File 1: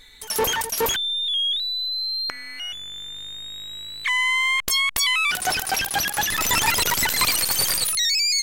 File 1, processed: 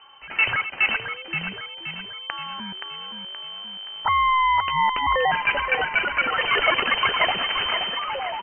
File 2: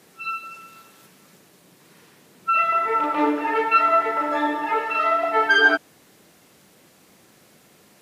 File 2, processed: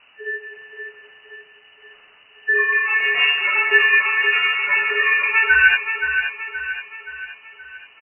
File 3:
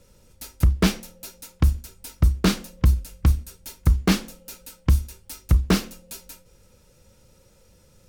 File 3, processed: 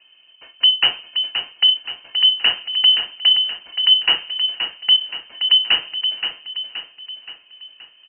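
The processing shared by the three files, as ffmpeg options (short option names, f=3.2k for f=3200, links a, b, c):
-af "aecho=1:1:524|1048|1572|2096|2620|3144:0.422|0.207|0.101|0.0496|0.0243|0.0119,lowpass=f=2.6k:t=q:w=0.5098,lowpass=f=2.6k:t=q:w=0.6013,lowpass=f=2.6k:t=q:w=0.9,lowpass=f=2.6k:t=q:w=2.563,afreqshift=-3100,volume=2.5dB"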